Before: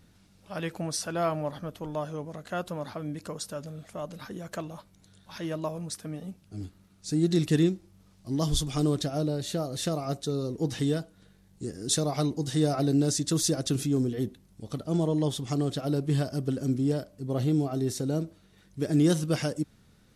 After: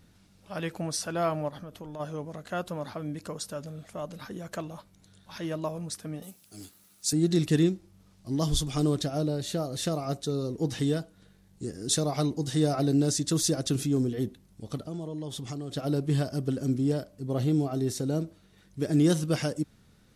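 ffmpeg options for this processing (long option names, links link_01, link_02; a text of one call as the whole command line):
ffmpeg -i in.wav -filter_complex "[0:a]asplit=3[link_01][link_02][link_03];[link_01]afade=type=out:start_time=1.48:duration=0.02[link_04];[link_02]acompressor=threshold=-37dB:ratio=6:attack=3.2:release=140:knee=1:detection=peak,afade=type=in:start_time=1.48:duration=0.02,afade=type=out:start_time=1.99:duration=0.02[link_05];[link_03]afade=type=in:start_time=1.99:duration=0.02[link_06];[link_04][link_05][link_06]amix=inputs=3:normalize=0,asettb=1/sr,asplit=3[link_07][link_08][link_09];[link_07]atrim=end=6.224[link_10];[link_08]atrim=start=6.22:end=7.13,asetpts=PTS-STARTPTS,afade=type=in:duration=0.004:curve=qsin,afade=type=out:start_time=0.906:duration=0.004:curve=qsin,aemphasis=mode=production:type=riaa[link_11];[link_09]atrim=start=7.126[link_12];[link_10][link_11]acrossfade=duration=0.004:curve1=hsin:curve2=qsin[link_13];[link_13][link_12]acrossfade=duration=0.004:curve1=qsin:curve2=hsin,asettb=1/sr,asplit=3[link_14][link_15][link_16];[link_14]atrim=end=14.774[link_17];[link_15]atrim=start=14.77:end=15.77,asetpts=PTS-STARTPTS,afade=type=in:duration=0.004:curve=qsin,afade=type=out:start_time=0.996:duration=0.004:curve=qsin,acompressor=threshold=-33dB:ratio=5:attack=3.2:release=140:knee=1:detection=peak[link_18];[link_16]atrim=start=15.766[link_19];[link_17][link_18]acrossfade=duration=0.004:curve1=hsin:curve2=qsin[link_20];[link_20][link_19]acrossfade=duration=0.004:curve1=qsin:curve2=hsin" out.wav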